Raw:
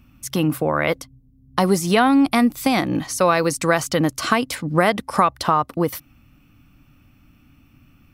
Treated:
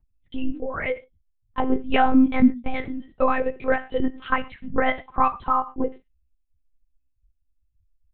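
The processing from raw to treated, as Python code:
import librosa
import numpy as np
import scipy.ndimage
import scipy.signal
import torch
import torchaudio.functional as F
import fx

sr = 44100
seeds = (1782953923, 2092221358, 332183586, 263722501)

y = fx.bin_expand(x, sr, power=2.0)
y = scipy.signal.sosfilt(scipy.signal.butter(4, 2700.0, 'lowpass', fs=sr, output='sos'), y)
y = fx.rev_gated(y, sr, seeds[0], gate_ms=160, shape='falling', drr_db=10.5)
y = fx.lpc_monotone(y, sr, seeds[1], pitch_hz=260.0, order=8)
y = F.gain(torch.from_numpy(y), 1.0).numpy()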